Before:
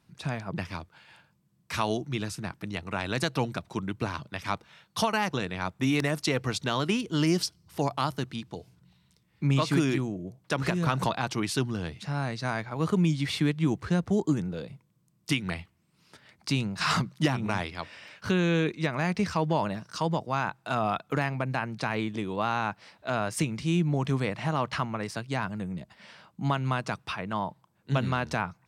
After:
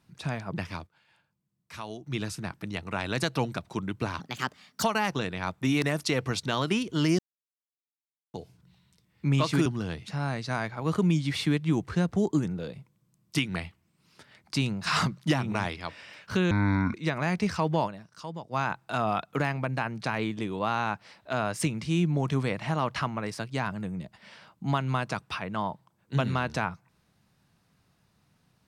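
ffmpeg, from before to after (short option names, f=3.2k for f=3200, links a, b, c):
-filter_complex "[0:a]asplit=12[a][b][c][d][e][f][g][h][i][j][k][l];[a]atrim=end=0.87,asetpts=PTS-STARTPTS,afade=t=out:st=0.69:d=0.18:c=log:silence=0.281838[m];[b]atrim=start=0.87:end=2.07,asetpts=PTS-STARTPTS,volume=-11dB[n];[c]atrim=start=2.07:end=4.204,asetpts=PTS-STARTPTS,afade=t=in:d=0.18:c=log:silence=0.281838[o];[d]atrim=start=4.2:end=5.01,asetpts=PTS-STARTPTS,asetrate=56889,aresample=44100[p];[e]atrim=start=5.006:end=7.37,asetpts=PTS-STARTPTS,afade=t=out:st=2.36:d=0.004:c=hsin[q];[f]atrim=start=7.37:end=8.52,asetpts=PTS-STARTPTS,volume=0[r];[g]atrim=start=8.52:end=9.842,asetpts=PTS-STARTPTS,afade=t=in:d=0.004:c=hsin[s];[h]atrim=start=11.598:end=18.454[t];[i]atrim=start=18.45:end=18.71,asetpts=PTS-STARTPTS,asetrate=26460,aresample=44100[u];[j]atrim=start=18.706:end=19.86,asetpts=PTS-STARTPTS,afade=t=out:st=0.914:d=0.24:c=exp:silence=0.298538[v];[k]atrim=start=19.86:end=20.07,asetpts=PTS-STARTPTS,volume=-10.5dB[w];[l]atrim=start=20.07,asetpts=PTS-STARTPTS,afade=t=in:d=0.24:c=exp:silence=0.298538[x];[m][n][o]concat=n=3:v=0:a=1[y];[y][p]acrossfade=d=0.004:c1=hsin:c2=hsin[z];[q][r][s]concat=n=3:v=0:a=1[aa];[z][aa]acrossfade=d=0.004:c1=hsin:c2=hsin[ab];[ab][t]acrossfade=d=0.004:c1=hsin:c2=hsin[ac];[ac][u]acrossfade=d=0.004:c1=hsin:c2=hsin[ad];[v][w][x]concat=n=3:v=0:a=1[ae];[ad][ae]acrossfade=d=0.004:c1=hsin:c2=hsin"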